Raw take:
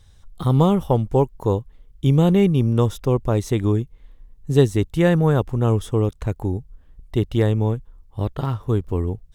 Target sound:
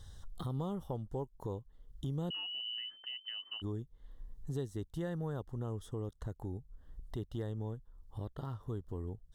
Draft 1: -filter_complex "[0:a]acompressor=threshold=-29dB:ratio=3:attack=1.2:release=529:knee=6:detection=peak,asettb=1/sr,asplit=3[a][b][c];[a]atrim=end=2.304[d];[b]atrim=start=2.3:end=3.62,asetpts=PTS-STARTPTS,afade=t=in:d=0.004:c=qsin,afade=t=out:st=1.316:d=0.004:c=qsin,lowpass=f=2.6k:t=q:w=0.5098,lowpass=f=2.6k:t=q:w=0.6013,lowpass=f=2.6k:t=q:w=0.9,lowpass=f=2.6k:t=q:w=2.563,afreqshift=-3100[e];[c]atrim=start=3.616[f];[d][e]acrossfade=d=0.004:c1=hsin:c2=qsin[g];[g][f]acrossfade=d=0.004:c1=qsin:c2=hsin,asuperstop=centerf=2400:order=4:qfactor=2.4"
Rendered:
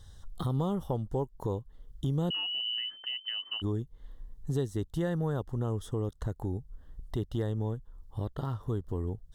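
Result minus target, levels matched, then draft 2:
compressor: peak gain reduction -7.5 dB
-filter_complex "[0:a]acompressor=threshold=-40dB:ratio=3:attack=1.2:release=529:knee=6:detection=peak,asettb=1/sr,asplit=3[a][b][c];[a]atrim=end=2.304[d];[b]atrim=start=2.3:end=3.62,asetpts=PTS-STARTPTS,afade=t=in:d=0.004:c=qsin,afade=t=out:st=1.316:d=0.004:c=qsin,lowpass=f=2.6k:t=q:w=0.5098,lowpass=f=2.6k:t=q:w=0.6013,lowpass=f=2.6k:t=q:w=0.9,lowpass=f=2.6k:t=q:w=2.563,afreqshift=-3100[e];[c]atrim=start=3.616[f];[d][e]acrossfade=d=0.004:c1=hsin:c2=qsin[g];[g][f]acrossfade=d=0.004:c1=qsin:c2=hsin,asuperstop=centerf=2400:order=4:qfactor=2.4"

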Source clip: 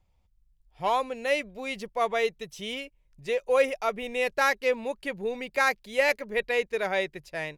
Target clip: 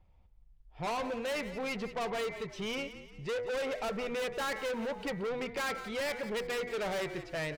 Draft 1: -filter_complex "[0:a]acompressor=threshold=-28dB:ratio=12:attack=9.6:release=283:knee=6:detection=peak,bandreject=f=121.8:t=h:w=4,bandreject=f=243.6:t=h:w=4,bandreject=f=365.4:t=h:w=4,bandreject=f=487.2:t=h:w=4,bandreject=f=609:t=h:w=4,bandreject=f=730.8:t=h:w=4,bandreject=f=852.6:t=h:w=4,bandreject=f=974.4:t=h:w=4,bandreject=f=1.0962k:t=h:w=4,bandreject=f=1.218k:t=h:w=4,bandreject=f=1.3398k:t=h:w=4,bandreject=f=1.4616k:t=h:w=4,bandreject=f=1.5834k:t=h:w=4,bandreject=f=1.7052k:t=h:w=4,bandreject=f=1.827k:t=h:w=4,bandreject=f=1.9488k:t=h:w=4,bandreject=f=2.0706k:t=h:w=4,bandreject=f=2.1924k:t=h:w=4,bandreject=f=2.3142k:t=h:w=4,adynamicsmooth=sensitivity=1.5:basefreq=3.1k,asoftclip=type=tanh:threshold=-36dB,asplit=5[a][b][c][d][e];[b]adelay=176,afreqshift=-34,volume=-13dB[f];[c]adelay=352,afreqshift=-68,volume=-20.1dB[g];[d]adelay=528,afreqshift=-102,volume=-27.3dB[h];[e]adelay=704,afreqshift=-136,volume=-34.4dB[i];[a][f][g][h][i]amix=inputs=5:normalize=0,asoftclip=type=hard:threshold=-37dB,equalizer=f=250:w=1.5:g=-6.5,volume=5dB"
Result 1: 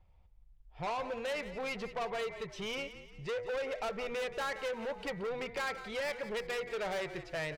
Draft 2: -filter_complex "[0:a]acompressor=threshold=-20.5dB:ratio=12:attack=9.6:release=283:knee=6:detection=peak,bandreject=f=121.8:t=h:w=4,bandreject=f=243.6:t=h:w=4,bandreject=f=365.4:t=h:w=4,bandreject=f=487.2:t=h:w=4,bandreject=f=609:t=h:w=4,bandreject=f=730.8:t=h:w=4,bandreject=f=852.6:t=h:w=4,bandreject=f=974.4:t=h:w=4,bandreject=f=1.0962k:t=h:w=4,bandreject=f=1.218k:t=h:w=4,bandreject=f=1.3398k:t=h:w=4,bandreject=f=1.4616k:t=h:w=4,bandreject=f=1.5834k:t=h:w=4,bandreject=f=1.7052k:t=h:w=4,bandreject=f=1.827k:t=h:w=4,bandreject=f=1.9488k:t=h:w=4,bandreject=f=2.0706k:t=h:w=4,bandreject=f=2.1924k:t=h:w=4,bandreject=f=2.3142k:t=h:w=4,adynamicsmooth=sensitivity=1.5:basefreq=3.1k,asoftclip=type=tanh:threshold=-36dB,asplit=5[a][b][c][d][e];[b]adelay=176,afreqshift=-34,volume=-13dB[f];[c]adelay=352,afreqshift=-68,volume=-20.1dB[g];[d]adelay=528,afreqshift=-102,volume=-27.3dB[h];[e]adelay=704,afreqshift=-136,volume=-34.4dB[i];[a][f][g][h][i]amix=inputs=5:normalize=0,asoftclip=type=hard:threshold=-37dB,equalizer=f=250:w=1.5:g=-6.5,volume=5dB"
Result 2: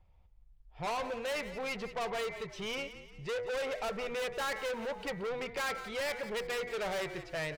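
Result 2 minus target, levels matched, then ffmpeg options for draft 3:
250 Hz band -4.0 dB
-filter_complex "[0:a]acompressor=threshold=-20.5dB:ratio=12:attack=9.6:release=283:knee=6:detection=peak,bandreject=f=121.8:t=h:w=4,bandreject=f=243.6:t=h:w=4,bandreject=f=365.4:t=h:w=4,bandreject=f=487.2:t=h:w=4,bandreject=f=609:t=h:w=4,bandreject=f=730.8:t=h:w=4,bandreject=f=852.6:t=h:w=4,bandreject=f=974.4:t=h:w=4,bandreject=f=1.0962k:t=h:w=4,bandreject=f=1.218k:t=h:w=4,bandreject=f=1.3398k:t=h:w=4,bandreject=f=1.4616k:t=h:w=4,bandreject=f=1.5834k:t=h:w=4,bandreject=f=1.7052k:t=h:w=4,bandreject=f=1.827k:t=h:w=4,bandreject=f=1.9488k:t=h:w=4,bandreject=f=2.0706k:t=h:w=4,bandreject=f=2.1924k:t=h:w=4,bandreject=f=2.3142k:t=h:w=4,adynamicsmooth=sensitivity=1.5:basefreq=3.1k,asoftclip=type=tanh:threshold=-36dB,asplit=5[a][b][c][d][e];[b]adelay=176,afreqshift=-34,volume=-13dB[f];[c]adelay=352,afreqshift=-68,volume=-20.1dB[g];[d]adelay=528,afreqshift=-102,volume=-27.3dB[h];[e]adelay=704,afreqshift=-136,volume=-34.4dB[i];[a][f][g][h][i]amix=inputs=5:normalize=0,asoftclip=type=hard:threshold=-37dB,volume=5dB"

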